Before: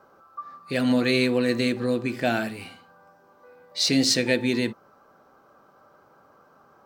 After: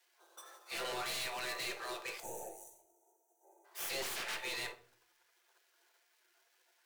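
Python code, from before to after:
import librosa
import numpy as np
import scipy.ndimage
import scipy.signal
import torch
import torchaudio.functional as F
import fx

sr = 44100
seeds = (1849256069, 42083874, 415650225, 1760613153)

y = fx.dead_time(x, sr, dead_ms=0.057)
y = fx.spec_gate(y, sr, threshold_db=-15, keep='weak')
y = scipy.signal.sosfilt(scipy.signal.cheby1(10, 1.0, 330.0, 'highpass', fs=sr, output='sos'), y)
y = fx.tube_stage(y, sr, drive_db=25.0, bias=0.25)
y = np.clip(y, -10.0 ** (-36.5 / 20.0), 10.0 ** (-36.5 / 20.0))
y = fx.spec_box(y, sr, start_s=2.2, length_s=1.45, low_hz=960.0, high_hz=5800.0, gain_db=-26)
y = fx.room_shoebox(y, sr, seeds[0], volume_m3=420.0, walls='furnished', distance_m=0.81)
y = fx.doppler_dist(y, sr, depth_ms=0.93, at=(4.02, 4.43))
y = y * 10.0 ** (-1.0 / 20.0)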